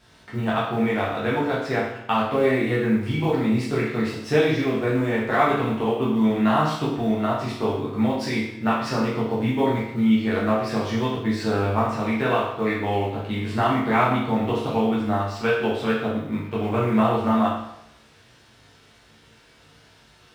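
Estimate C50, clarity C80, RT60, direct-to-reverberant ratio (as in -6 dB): 2.0 dB, 5.5 dB, 0.80 s, -8.0 dB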